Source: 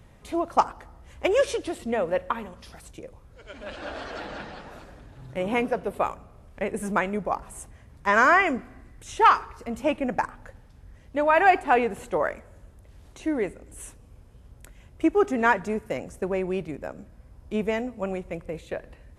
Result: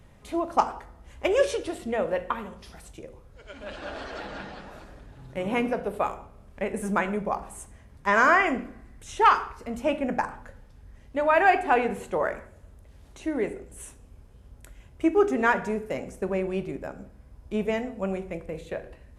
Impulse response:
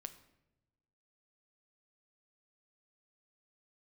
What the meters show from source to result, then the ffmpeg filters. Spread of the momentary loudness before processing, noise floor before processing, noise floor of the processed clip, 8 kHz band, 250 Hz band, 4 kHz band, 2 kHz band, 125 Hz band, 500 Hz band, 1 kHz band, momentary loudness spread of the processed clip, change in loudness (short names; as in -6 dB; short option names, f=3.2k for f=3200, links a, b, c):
22 LU, -52 dBFS, -52 dBFS, -1.0 dB, -0.5 dB, -1.0 dB, -1.0 dB, 0.0 dB, -0.5 dB, -1.5 dB, 22 LU, -1.0 dB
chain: -filter_complex "[1:a]atrim=start_sample=2205,afade=t=out:st=0.36:d=0.01,atrim=end_sample=16317,asetrate=61740,aresample=44100[a];[0:a][a]afir=irnorm=-1:irlink=0,volume=6.5dB"